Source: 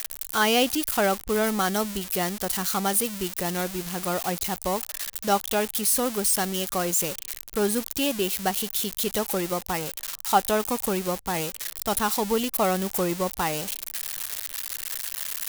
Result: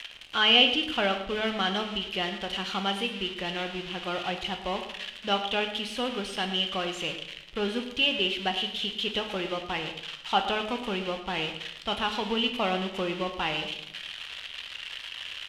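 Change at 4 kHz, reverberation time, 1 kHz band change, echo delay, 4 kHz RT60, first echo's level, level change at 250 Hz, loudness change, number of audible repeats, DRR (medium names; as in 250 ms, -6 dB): +6.0 dB, 0.80 s, -4.0 dB, 111 ms, 0.65 s, -14.0 dB, -4.5 dB, -3.0 dB, 1, 5.0 dB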